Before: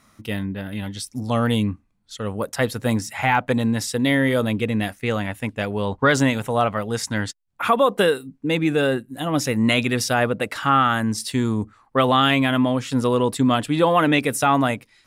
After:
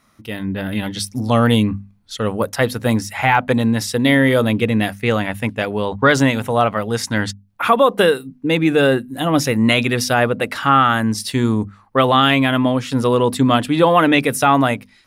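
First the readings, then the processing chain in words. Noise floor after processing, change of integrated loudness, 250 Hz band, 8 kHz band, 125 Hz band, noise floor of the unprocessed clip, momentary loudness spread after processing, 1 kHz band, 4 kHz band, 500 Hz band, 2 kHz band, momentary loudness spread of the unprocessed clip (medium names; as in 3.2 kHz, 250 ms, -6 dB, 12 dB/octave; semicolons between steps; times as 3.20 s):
-52 dBFS, +4.5 dB, +4.0 dB, +2.5 dB, +4.5 dB, -60 dBFS, 10 LU, +4.5 dB, +4.5 dB, +4.5 dB, +4.5 dB, 10 LU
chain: hum notches 50/100/150/200/250 Hz; level rider; peaking EQ 7.6 kHz -5 dB 0.44 oct; trim -1.5 dB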